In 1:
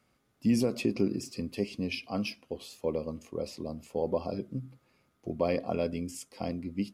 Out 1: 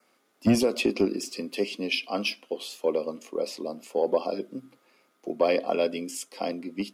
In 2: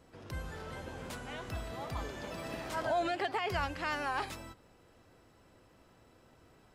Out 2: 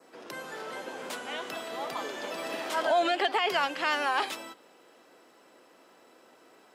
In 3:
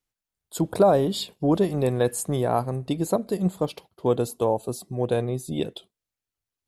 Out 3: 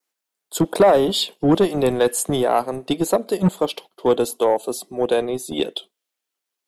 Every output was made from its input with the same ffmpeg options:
-filter_complex "[0:a]adynamicequalizer=threshold=0.00178:dfrequency=3200:dqfactor=3.2:tfrequency=3200:tqfactor=3.2:attack=5:release=100:ratio=0.375:range=3:mode=boostabove:tftype=bell,acrossover=split=250|630|4600[s0][s1][s2][s3];[s0]acrusher=bits=3:mix=0:aa=0.5[s4];[s4][s1][s2][s3]amix=inputs=4:normalize=0,asoftclip=type=tanh:threshold=0.211,volume=2.24"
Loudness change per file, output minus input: +5.0 LU, +7.0 LU, +5.0 LU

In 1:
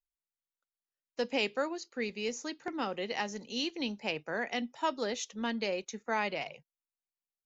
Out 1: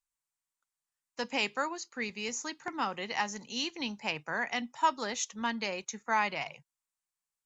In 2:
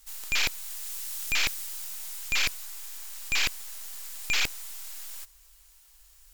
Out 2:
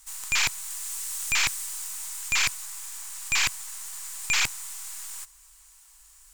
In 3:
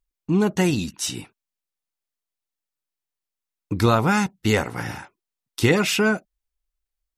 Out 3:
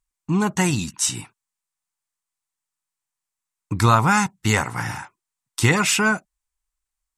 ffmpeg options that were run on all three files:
-af "equalizer=f=125:t=o:w=1:g=7,equalizer=f=500:t=o:w=1:g=-5,equalizer=f=1000:t=o:w=1:g=10,equalizer=f=2000:t=o:w=1:g=4,equalizer=f=8000:t=o:w=1:g=12,volume=0.708"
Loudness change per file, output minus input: +1.5 LU, +3.0 LU, +1.5 LU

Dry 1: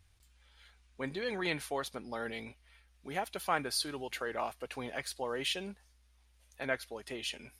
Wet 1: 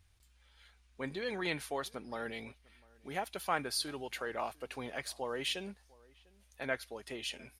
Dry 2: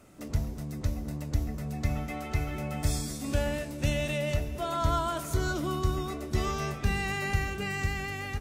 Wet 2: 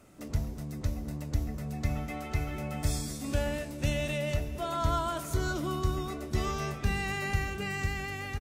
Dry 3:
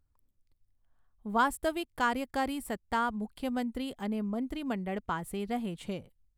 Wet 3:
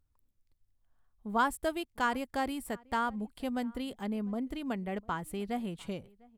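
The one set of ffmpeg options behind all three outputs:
-filter_complex "[0:a]asplit=2[s0][s1];[s1]adelay=699.7,volume=0.0562,highshelf=f=4000:g=-15.7[s2];[s0][s2]amix=inputs=2:normalize=0,volume=0.841"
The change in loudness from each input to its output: -1.5 LU, -1.5 LU, -1.5 LU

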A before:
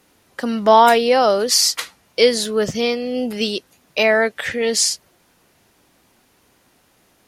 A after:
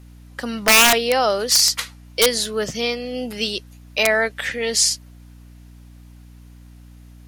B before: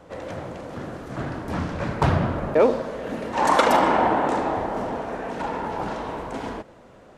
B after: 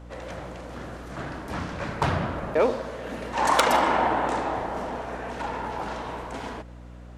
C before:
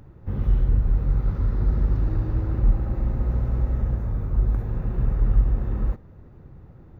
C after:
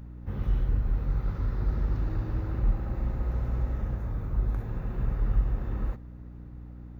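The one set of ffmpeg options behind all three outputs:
-af "aeval=exprs='(mod(1.68*val(0)+1,2)-1)/1.68':c=same,tiltshelf=f=790:g=-3.5,aeval=exprs='val(0)+0.0112*(sin(2*PI*60*n/s)+sin(2*PI*2*60*n/s)/2+sin(2*PI*3*60*n/s)/3+sin(2*PI*4*60*n/s)/4+sin(2*PI*5*60*n/s)/5)':c=same,volume=0.708"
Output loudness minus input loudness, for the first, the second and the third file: -1.0 LU, -3.0 LU, -6.0 LU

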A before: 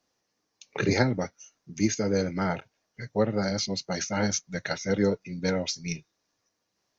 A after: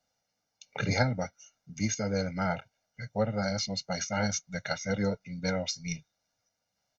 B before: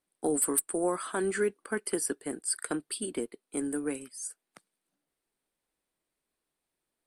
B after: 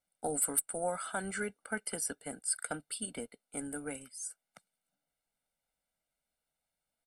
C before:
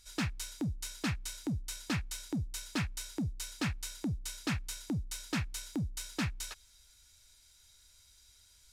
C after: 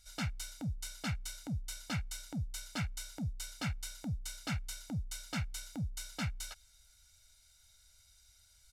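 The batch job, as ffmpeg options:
-af "aecho=1:1:1.4:0.8,volume=0.562"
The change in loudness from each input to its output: -3.5 LU, -4.5 LU, -3.0 LU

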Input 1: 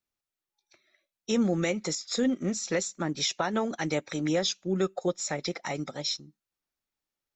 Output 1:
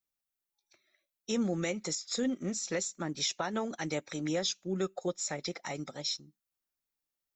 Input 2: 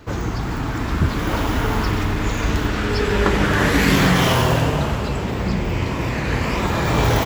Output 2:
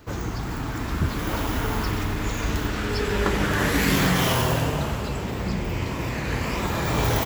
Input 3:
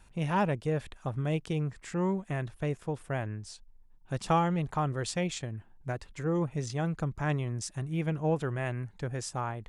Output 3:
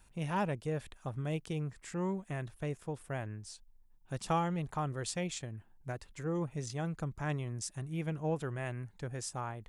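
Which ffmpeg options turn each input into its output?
-af "highshelf=f=8600:g=10,volume=0.531"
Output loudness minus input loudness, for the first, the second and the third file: -4.5 LU, -5.0 LU, -5.5 LU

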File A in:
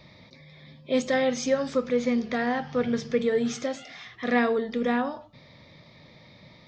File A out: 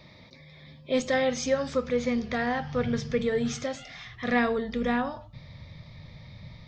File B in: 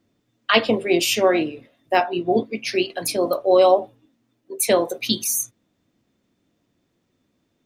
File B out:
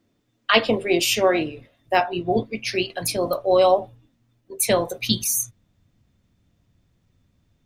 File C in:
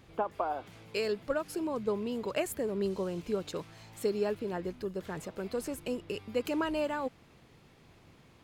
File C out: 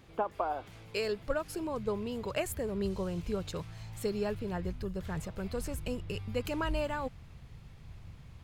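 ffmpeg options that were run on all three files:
-af "asubboost=boost=10:cutoff=100"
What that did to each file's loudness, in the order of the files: -1.5 LU, -1.0 LU, -1.5 LU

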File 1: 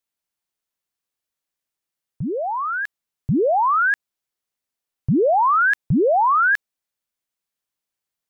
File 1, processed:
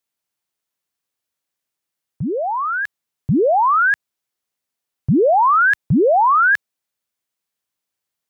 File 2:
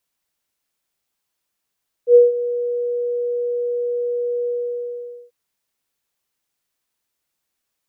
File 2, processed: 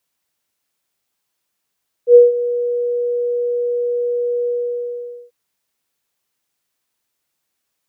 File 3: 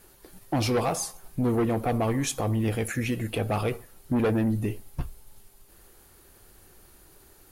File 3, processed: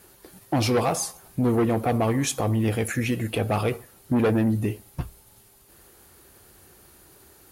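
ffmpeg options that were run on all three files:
-af "highpass=60,volume=1.41"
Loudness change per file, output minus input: +3.0 LU, +3.0 LU, +3.0 LU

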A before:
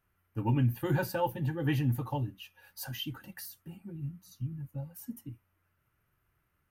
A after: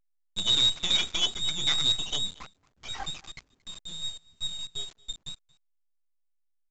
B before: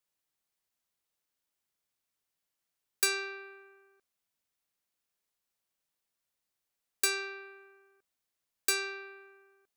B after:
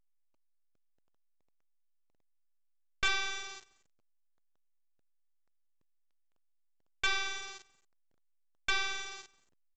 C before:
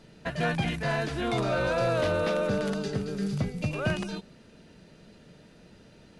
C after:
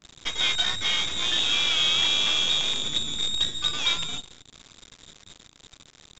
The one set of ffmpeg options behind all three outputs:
-filter_complex "[0:a]lowpass=f=3300:t=q:w=0.5098,lowpass=f=3300:t=q:w=0.6013,lowpass=f=3300:t=q:w=0.9,lowpass=f=3300:t=q:w=2.563,afreqshift=-3900,acrossover=split=320[s0][s1];[s1]acrusher=bits=5:dc=4:mix=0:aa=0.000001[s2];[s0][s2]amix=inputs=2:normalize=0,asplit=2[s3][s4];[s4]adelay=227.4,volume=0.0631,highshelf=f=4000:g=-5.12[s5];[s3][s5]amix=inputs=2:normalize=0,asoftclip=type=tanh:threshold=0.0631,volume=2.37" -ar 16000 -c:a pcm_alaw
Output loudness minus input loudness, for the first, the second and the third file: +7.5 LU, -2.0 LU, +6.0 LU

